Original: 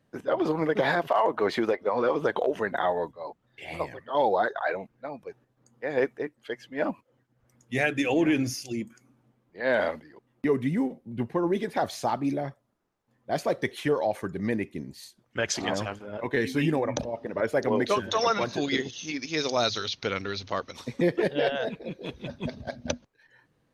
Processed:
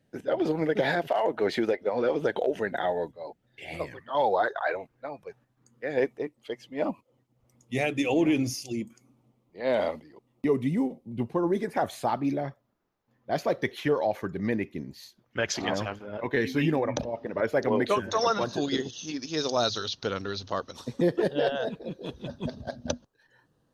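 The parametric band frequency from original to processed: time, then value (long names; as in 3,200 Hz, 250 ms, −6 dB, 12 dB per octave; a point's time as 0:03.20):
parametric band −13.5 dB 0.41 octaves
0:03.74 1,100 Hz
0:04.42 200 Hz
0:05.10 200 Hz
0:06.13 1,600 Hz
0:11.24 1,600 Hz
0:12.25 8,700 Hz
0:17.70 8,700 Hz
0:18.27 2,200 Hz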